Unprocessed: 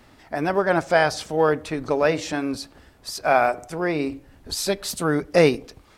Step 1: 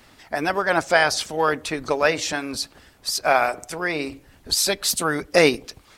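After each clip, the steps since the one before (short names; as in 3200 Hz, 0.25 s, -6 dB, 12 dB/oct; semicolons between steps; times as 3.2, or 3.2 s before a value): tilt shelf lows -4 dB, about 1500 Hz; harmonic-percussive split percussive +7 dB; gain -2 dB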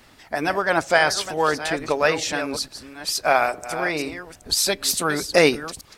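reverse delay 0.447 s, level -11 dB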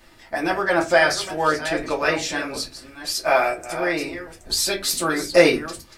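reverb RT60 0.20 s, pre-delay 3 ms, DRR -2 dB; gain -4 dB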